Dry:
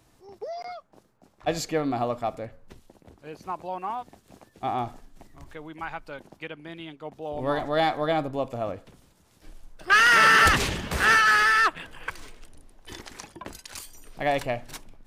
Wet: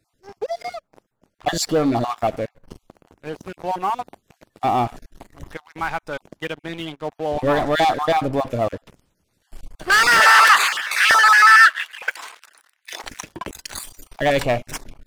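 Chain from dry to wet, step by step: random spectral dropouts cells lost 23%; sample leveller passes 3; 10.2–13.04 LFO high-pass saw up 1.1 Hz 680–2300 Hz; gain -1 dB

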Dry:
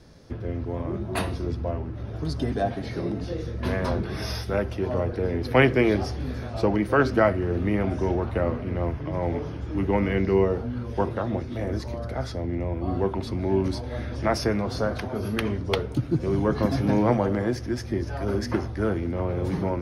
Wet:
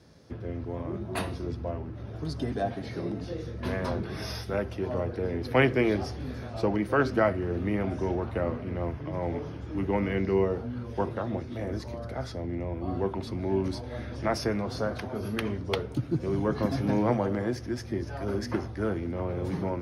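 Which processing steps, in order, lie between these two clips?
HPF 72 Hz; gain -4 dB

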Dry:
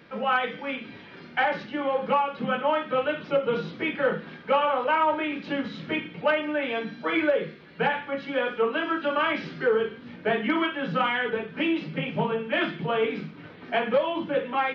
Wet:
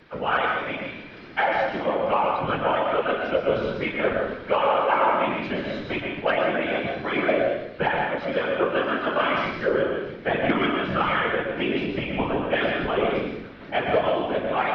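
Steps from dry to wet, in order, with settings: whisperiser; plate-style reverb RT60 0.73 s, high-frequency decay 0.8×, pre-delay 0.105 s, DRR 1.5 dB

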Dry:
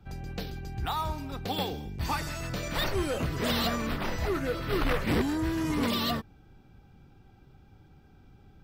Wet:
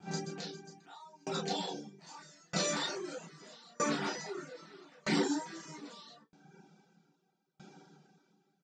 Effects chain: limiter -30 dBFS, peak gain reduction 10 dB; brick-wall FIR band-pass 160–8700 Hz; doubler 34 ms -10.5 dB; reverb, pre-delay 3 ms, DRR -7.5 dB; reverb removal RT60 0.72 s; high shelf 5100 Hz +11 dB; dB-ramp tremolo decaying 0.79 Hz, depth 34 dB; gain +2.5 dB

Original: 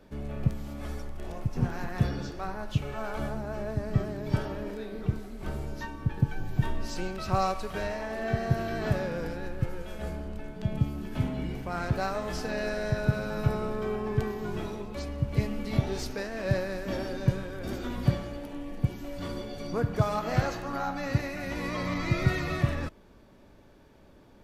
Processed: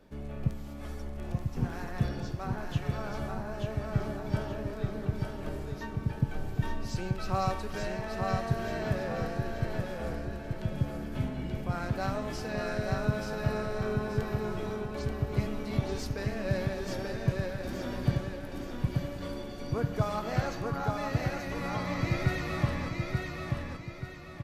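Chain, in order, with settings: on a send: feedback echo 0.882 s, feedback 39%, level -3.5 dB; on the sum: gain -3.5 dB

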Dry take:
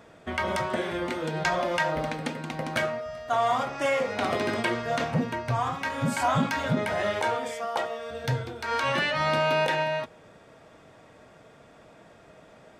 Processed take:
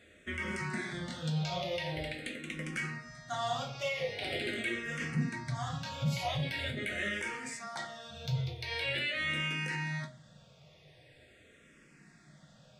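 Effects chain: graphic EQ 125/1000/2000/4000/8000 Hz +9/-11/+9/+7/+7 dB; limiter -16 dBFS, peak gain reduction 10.5 dB; shoebox room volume 130 m³, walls furnished, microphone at 1 m; endless phaser -0.44 Hz; gain -8 dB

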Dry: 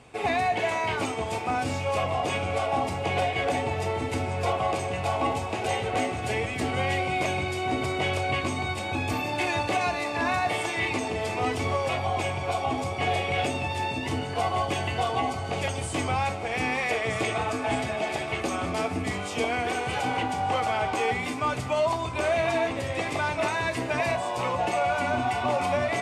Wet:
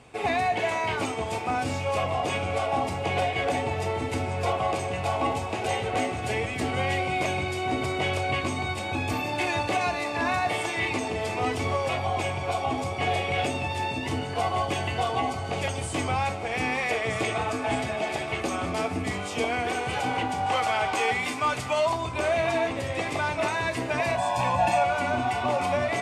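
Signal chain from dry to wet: 20.46–21.9 tilt shelf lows -4 dB, about 640 Hz; 24.18–24.84 comb 1.2 ms, depth 99%

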